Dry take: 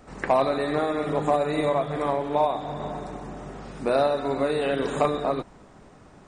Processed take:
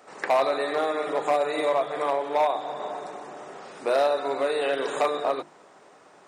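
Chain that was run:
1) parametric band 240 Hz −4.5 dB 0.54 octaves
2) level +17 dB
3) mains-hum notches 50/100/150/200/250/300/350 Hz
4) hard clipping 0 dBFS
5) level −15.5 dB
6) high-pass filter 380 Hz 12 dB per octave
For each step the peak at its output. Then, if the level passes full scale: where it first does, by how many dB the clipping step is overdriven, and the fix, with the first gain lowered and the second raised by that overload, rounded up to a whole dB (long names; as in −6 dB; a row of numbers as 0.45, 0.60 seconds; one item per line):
−10.5, +6.5, +7.0, 0.0, −15.5, −10.5 dBFS
step 2, 7.0 dB
step 2 +10 dB, step 5 −8.5 dB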